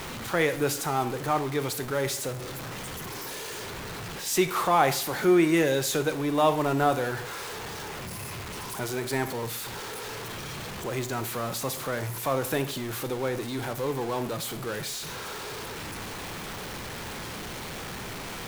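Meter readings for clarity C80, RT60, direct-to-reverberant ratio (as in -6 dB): 16.5 dB, 0.50 s, 10.0 dB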